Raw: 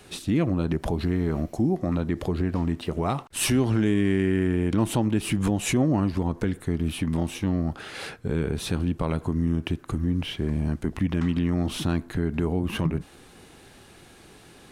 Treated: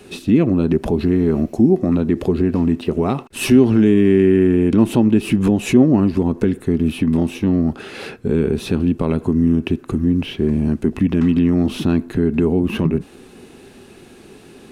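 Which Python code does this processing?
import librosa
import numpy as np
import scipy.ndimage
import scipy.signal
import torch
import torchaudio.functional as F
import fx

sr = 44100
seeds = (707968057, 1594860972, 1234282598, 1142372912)

y = fx.dynamic_eq(x, sr, hz=8400.0, q=1.2, threshold_db=-50.0, ratio=4.0, max_db=-5)
y = fx.small_body(y, sr, hz=(240.0, 380.0, 2600.0), ring_ms=30, db=10)
y = y * librosa.db_to_amplitude(2.5)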